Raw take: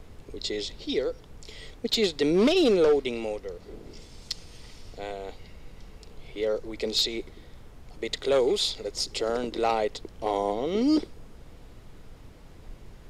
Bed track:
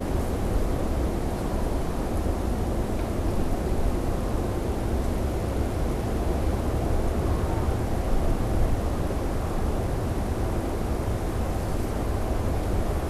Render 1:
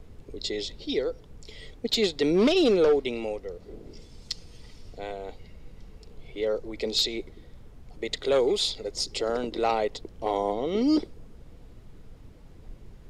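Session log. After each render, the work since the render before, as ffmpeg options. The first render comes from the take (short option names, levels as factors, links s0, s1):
-af "afftdn=nr=6:nf=-49"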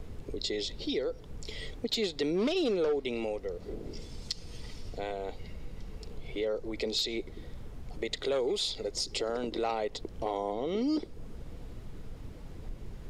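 -filter_complex "[0:a]asplit=2[s0][s1];[s1]alimiter=level_in=1.06:limit=0.0631:level=0:latency=1,volume=0.944,volume=0.75[s2];[s0][s2]amix=inputs=2:normalize=0,acompressor=threshold=0.0178:ratio=2"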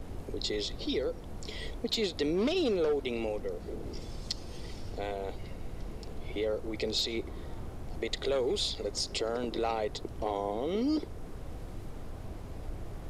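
-filter_complex "[1:a]volume=0.106[s0];[0:a][s0]amix=inputs=2:normalize=0"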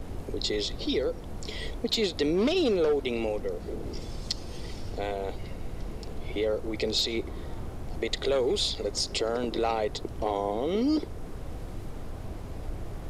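-af "volume=1.58"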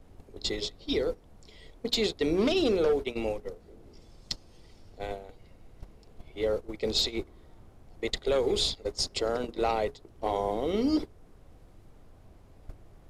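-af "bandreject=f=60:t=h:w=6,bandreject=f=120:t=h:w=6,bandreject=f=180:t=h:w=6,bandreject=f=240:t=h:w=6,bandreject=f=300:t=h:w=6,bandreject=f=360:t=h:w=6,bandreject=f=420:t=h:w=6,bandreject=f=480:t=h:w=6,agate=range=0.158:threshold=0.0355:ratio=16:detection=peak"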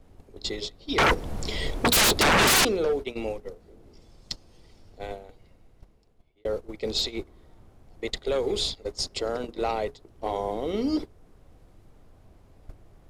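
-filter_complex "[0:a]asettb=1/sr,asplit=3[s0][s1][s2];[s0]atrim=end=0.984[s3];[s1]atrim=start=0.98:end=2.65,asetpts=PTS-STARTPTS,afade=t=in:d=0.004:c=qsin,afade=t=out:st=1.666:d=0.004:c=qsin,aeval=exprs='0.158*sin(PI/2*7.94*val(0)/0.158)':c=same[s4];[s2]atrim=start=2.646[s5];[s3][s4]acrossfade=d=0.004:c1=hsin:c2=qsin[s6];[s6][s5]acrossfade=d=0.004:c1=qsin:c2=hsin,asplit=2[s7][s8];[s7]atrim=end=6.45,asetpts=PTS-STARTPTS,afade=t=out:st=5.22:d=1.23[s9];[s8]atrim=start=6.45,asetpts=PTS-STARTPTS,afade=t=in:d=0.004:c=hsin[s10];[s9][s10]concat=n=2:v=0:a=1"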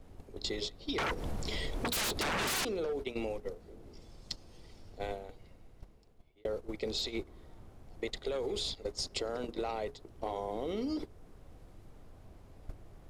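-af "alimiter=limit=0.075:level=0:latency=1:release=73,acompressor=threshold=0.0251:ratio=6"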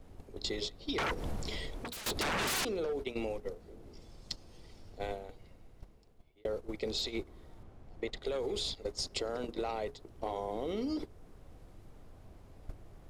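-filter_complex "[0:a]asettb=1/sr,asplit=3[s0][s1][s2];[s0]atrim=end=7.634[s3];[s1]atrim=start=7.63:end=8.22,asetpts=PTS-STARTPTS,afade=t=in:d=0.004:c=qsin,afade=t=out:st=0.586:d=0.004:c=qsin,lowpass=f=3600:p=1[s4];[s2]atrim=start=8.216[s5];[s3][s4]acrossfade=d=0.004:c1=hsin:c2=qsin[s6];[s6][s5]acrossfade=d=0.004:c1=qsin:c2=hsin,asplit=2[s7][s8];[s7]atrim=end=2.06,asetpts=PTS-STARTPTS,afade=t=out:st=1.32:d=0.74:silence=0.188365[s9];[s8]atrim=start=2.06,asetpts=PTS-STARTPTS,afade=t=in:d=0.004:c=hsin:silence=0.188365[s10];[s9][s10]concat=n=2:v=0:a=1"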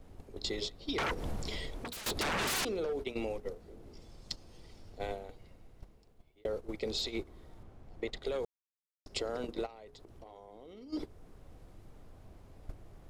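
-filter_complex "[0:a]asplit=3[s0][s1][s2];[s0]afade=t=out:st=9.65:d=0.02[s3];[s1]acompressor=threshold=0.00398:ratio=8:attack=3.2:release=140:knee=1:detection=peak,afade=t=in:st=9.65:d=0.02,afade=t=out:st=10.92:d=0.02[s4];[s2]afade=t=in:st=10.92:d=0.02[s5];[s3][s4][s5]amix=inputs=3:normalize=0,asplit=3[s6][s7][s8];[s6]atrim=end=8.45,asetpts=PTS-STARTPTS,afade=t=out:st=8.446:d=0.004:c=hsin[s9];[s7]atrim=start=8.45:end=9.06,asetpts=PTS-STARTPTS,volume=0[s10];[s8]atrim=start=9.06,asetpts=PTS-STARTPTS,afade=t=in:d=0.004:c=hsin[s11];[s9][s10][s11]concat=n=3:v=0:a=1"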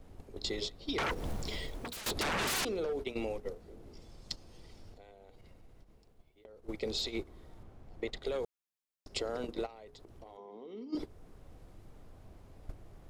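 -filter_complex "[0:a]asettb=1/sr,asplit=3[s0][s1][s2];[s0]atrim=end=1.104[s3];[s1]atrim=start=1.1:end=2,asetpts=PTS-STARTPTS,afade=t=in:d=0.004:c=qsin,afade=t=out:st=0.896:d=0.004:c=qsin,acrusher=bits=6:mode=log:mix=0:aa=0.000001[s4];[s2]atrim=start=1.996[s5];[s3][s4]acrossfade=d=0.004:c1=hsin:c2=qsin[s6];[s6][s5]acrossfade=d=0.004:c1=qsin:c2=hsin,asettb=1/sr,asplit=3[s7][s8][s9];[s7]atrim=end=4.934[s10];[s8]atrim=start=4.93:end=6.68,asetpts=PTS-STARTPTS,afade=t=in:d=0.004:c=qsin,afade=t=out:st=1.746:d=0.004:c=qsin,acompressor=threshold=0.00316:ratio=20:attack=3.2:release=140:knee=1:detection=peak[s11];[s9]atrim=start=6.676[s12];[s10][s11]acrossfade=d=0.004:c1=hsin:c2=qsin[s13];[s13][s12]acrossfade=d=0.004:c1=qsin:c2=hsin,asettb=1/sr,asplit=3[s14][s15][s16];[s14]atrim=end=10.374[s17];[s15]atrim=start=10.37:end=10.95,asetpts=PTS-STARTPTS,afade=t=in:d=0.004:c=qsin,afade=t=out:st=0.576:d=0.004:c=qsin,highpass=f=160:w=0.5412,highpass=f=160:w=1.3066,equalizer=f=230:t=q:w=4:g=9,equalizer=f=410:t=q:w=4:g=9,equalizer=f=600:t=q:w=4:g=-5,equalizer=f=1000:t=q:w=4:g=6,equalizer=f=1500:t=q:w=4:g=-6,equalizer=f=4500:t=q:w=4:g=-4,lowpass=f=5800:w=0.5412,lowpass=f=5800:w=1.3066[s18];[s16]atrim=start=10.946[s19];[s17][s18]acrossfade=d=0.004:c1=hsin:c2=qsin[s20];[s20][s19]acrossfade=d=0.004:c1=qsin:c2=hsin"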